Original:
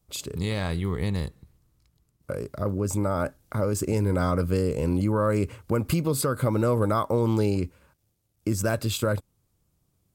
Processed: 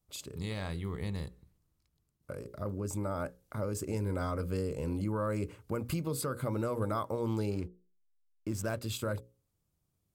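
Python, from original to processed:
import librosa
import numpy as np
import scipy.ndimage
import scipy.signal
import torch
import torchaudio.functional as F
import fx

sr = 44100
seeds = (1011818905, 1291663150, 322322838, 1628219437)

y = fx.backlash(x, sr, play_db=-38.0, at=(7.49, 8.8), fade=0.02)
y = fx.hum_notches(y, sr, base_hz=60, count=9)
y = y * librosa.db_to_amplitude(-9.0)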